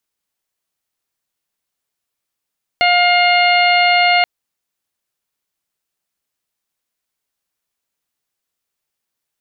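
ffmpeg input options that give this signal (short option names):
-f lavfi -i "aevalsrc='0.224*sin(2*PI*709*t)+0.0841*sin(2*PI*1418*t)+0.2*sin(2*PI*2127*t)+0.119*sin(2*PI*2836*t)+0.0316*sin(2*PI*3545*t)+0.0794*sin(2*PI*4254*t)':d=1.43:s=44100"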